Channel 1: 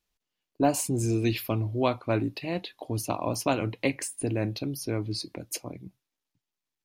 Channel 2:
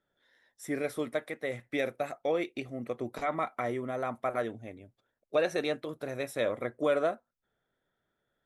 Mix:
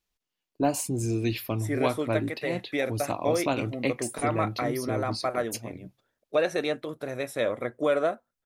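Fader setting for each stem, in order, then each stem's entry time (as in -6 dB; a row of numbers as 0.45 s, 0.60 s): -1.5 dB, +3.0 dB; 0.00 s, 1.00 s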